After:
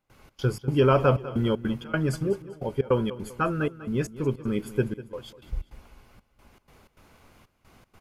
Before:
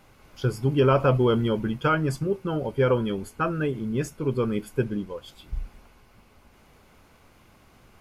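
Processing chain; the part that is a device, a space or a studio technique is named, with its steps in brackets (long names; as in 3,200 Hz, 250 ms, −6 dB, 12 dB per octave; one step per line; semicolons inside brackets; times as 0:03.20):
trance gate with a delay (gate pattern ".xx.xx.xxxxx." 155 BPM −24 dB; repeating echo 197 ms, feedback 40%, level −16 dB)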